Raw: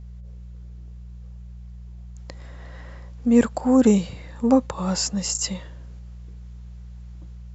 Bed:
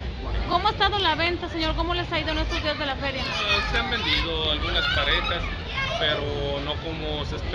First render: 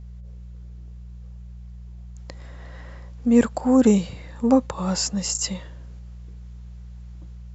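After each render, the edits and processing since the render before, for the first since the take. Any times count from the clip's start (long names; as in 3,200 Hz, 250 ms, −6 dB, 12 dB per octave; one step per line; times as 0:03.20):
no processing that can be heard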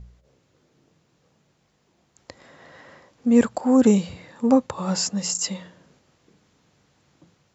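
hum removal 60 Hz, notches 3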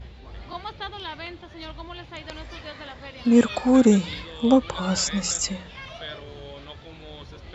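mix in bed −13 dB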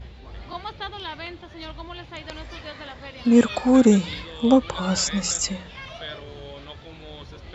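level +1 dB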